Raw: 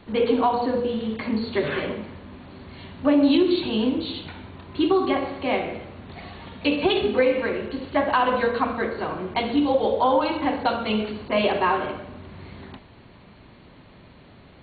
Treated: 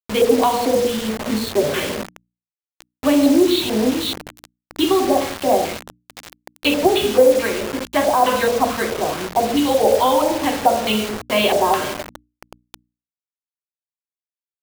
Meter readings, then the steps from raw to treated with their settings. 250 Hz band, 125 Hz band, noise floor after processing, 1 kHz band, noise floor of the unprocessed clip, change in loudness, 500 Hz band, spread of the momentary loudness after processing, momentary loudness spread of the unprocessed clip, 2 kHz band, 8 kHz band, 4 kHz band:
+3.5 dB, +2.5 dB, under -85 dBFS, +5.0 dB, -49 dBFS, +5.0 dB, +6.0 dB, 10 LU, 20 LU, +3.5 dB, no reading, +7.5 dB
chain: LFO low-pass square 2.3 Hz 700–3800 Hz; bit crusher 5-bit; hum notches 60/120/180/240/300 Hz; trim +3 dB

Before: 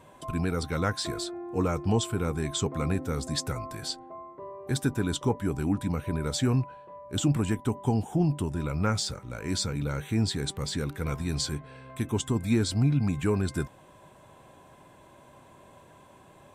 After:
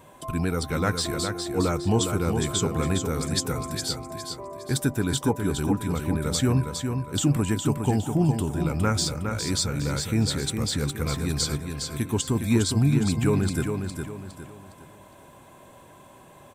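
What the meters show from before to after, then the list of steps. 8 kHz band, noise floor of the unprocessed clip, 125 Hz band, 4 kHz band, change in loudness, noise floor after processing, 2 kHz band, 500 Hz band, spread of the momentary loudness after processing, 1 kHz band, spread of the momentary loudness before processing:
+6.5 dB, -54 dBFS, +3.5 dB, +4.5 dB, +3.5 dB, -50 dBFS, +4.0 dB, +3.5 dB, 8 LU, +3.5 dB, 9 LU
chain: treble shelf 11 kHz +11.5 dB; on a send: feedback delay 410 ms, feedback 36%, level -6 dB; on the sum: trim +2.5 dB

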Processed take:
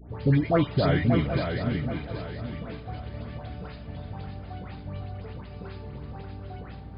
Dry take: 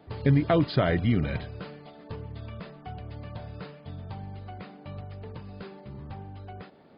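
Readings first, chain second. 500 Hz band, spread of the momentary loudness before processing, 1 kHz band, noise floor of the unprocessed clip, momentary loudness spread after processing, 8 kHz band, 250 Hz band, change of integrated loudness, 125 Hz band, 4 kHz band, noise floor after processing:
+1.5 dB, 19 LU, +1.5 dB, -51 dBFS, 17 LU, no reading, +1.5 dB, 0.0 dB, +1.5 dB, +1.5 dB, -42 dBFS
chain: hum 60 Hz, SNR 16 dB; phase dispersion highs, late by 112 ms, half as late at 1.6 kHz; on a send: shuffle delay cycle 779 ms, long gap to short 3:1, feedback 34%, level -6 dB

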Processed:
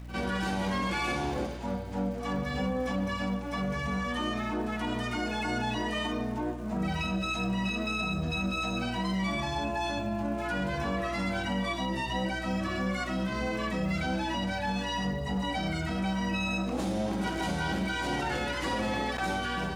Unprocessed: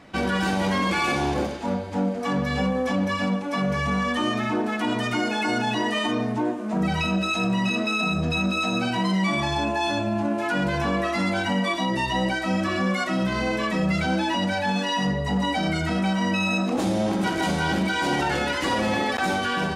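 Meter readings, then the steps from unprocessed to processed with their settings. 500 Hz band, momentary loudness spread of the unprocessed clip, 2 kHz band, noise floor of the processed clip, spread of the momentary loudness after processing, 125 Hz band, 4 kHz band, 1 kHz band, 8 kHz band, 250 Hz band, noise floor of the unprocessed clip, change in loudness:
-7.5 dB, 2 LU, -7.5 dB, -35 dBFS, 2 LU, -6.0 dB, -7.5 dB, -7.0 dB, -7.0 dB, -7.5 dB, -28 dBFS, -7.0 dB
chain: hum 60 Hz, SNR 12 dB; pre-echo 51 ms -14 dB; crackle 360 per s -41 dBFS; trim -7.5 dB

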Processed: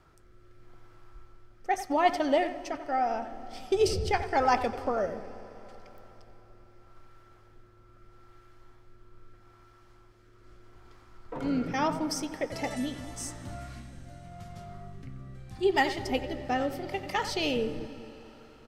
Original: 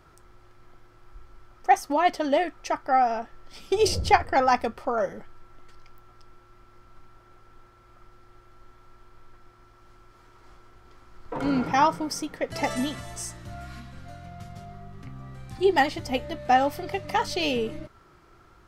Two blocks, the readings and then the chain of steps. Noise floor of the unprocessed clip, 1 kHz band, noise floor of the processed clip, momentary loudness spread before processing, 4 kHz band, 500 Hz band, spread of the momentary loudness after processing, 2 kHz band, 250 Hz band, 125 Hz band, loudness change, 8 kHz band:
-56 dBFS, -6.5 dB, -57 dBFS, 21 LU, -4.0 dB, -3.0 dB, 20 LU, -4.0 dB, -2.5 dB, -2.5 dB, -4.5 dB, -4.0 dB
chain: on a send: feedback echo behind a low-pass 212 ms, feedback 62%, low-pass 420 Hz, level -13 dB; on the sum: rotary cabinet horn 0.8 Hz; speakerphone echo 90 ms, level -11 dB; algorithmic reverb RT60 4.3 s, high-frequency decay 1×, pre-delay 110 ms, DRR 17.5 dB; trim -1.5 dB

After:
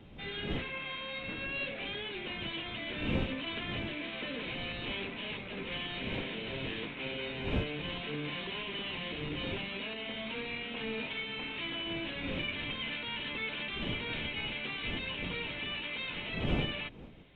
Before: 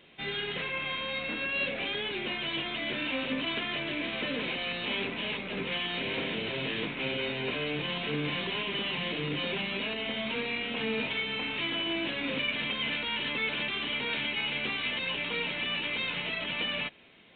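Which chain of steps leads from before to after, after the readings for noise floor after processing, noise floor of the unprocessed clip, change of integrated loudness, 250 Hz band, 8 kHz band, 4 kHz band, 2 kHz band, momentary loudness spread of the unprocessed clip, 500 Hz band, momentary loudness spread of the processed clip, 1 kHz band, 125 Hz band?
-43 dBFS, -37 dBFS, -5.5 dB, -3.0 dB, no reading, -6.0 dB, -6.0 dB, 3 LU, -5.0 dB, 4 LU, -5.5 dB, +1.5 dB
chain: wind noise 270 Hz -37 dBFS; trim -6 dB

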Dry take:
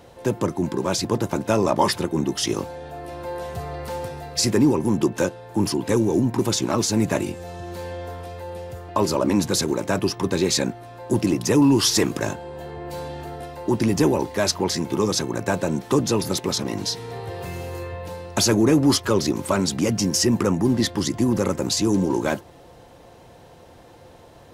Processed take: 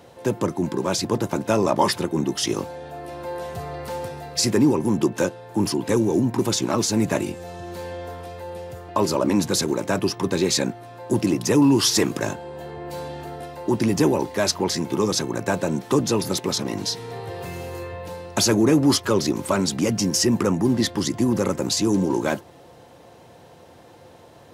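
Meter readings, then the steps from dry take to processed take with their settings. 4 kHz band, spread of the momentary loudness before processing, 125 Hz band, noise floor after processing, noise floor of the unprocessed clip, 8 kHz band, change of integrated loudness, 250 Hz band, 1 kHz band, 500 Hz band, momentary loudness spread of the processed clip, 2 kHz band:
0.0 dB, 15 LU, -1.0 dB, -48 dBFS, -47 dBFS, 0.0 dB, 0.0 dB, 0.0 dB, 0.0 dB, 0.0 dB, 15 LU, 0.0 dB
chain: high-pass 91 Hz

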